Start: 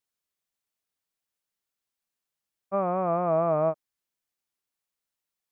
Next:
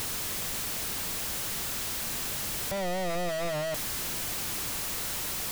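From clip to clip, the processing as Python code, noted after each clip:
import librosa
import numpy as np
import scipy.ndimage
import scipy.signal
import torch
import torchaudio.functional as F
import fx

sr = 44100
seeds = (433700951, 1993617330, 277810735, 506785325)

y = np.sign(x) * np.sqrt(np.mean(np.square(x)))
y = fx.low_shelf(y, sr, hz=230.0, db=9.5)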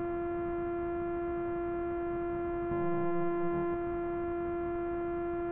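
y = np.r_[np.sort(x[:len(x) // 128 * 128].reshape(-1, 128), axis=1).ravel(), x[len(x) // 128 * 128:]]
y = scipy.ndimage.gaussian_filter1d(y, 5.2, mode='constant')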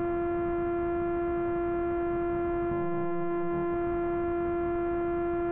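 y = fx.env_flatten(x, sr, amount_pct=100)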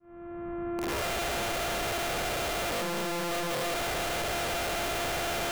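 y = fx.fade_in_head(x, sr, length_s=1.1)
y = (np.mod(10.0 ** (28.0 / 20.0) * y + 1.0, 2.0) - 1.0) / 10.0 ** (28.0 / 20.0)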